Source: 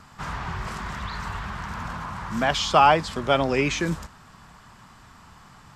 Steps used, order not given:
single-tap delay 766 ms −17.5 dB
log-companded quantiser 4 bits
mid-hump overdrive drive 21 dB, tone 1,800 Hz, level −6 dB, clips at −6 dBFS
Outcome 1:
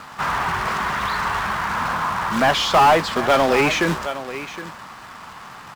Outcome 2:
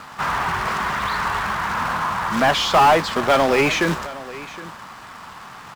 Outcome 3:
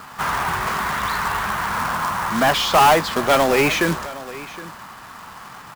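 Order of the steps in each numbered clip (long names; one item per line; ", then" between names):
single-tap delay, then log-companded quantiser, then mid-hump overdrive
log-companded quantiser, then mid-hump overdrive, then single-tap delay
mid-hump overdrive, then single-tap delay, then log-companded quantiser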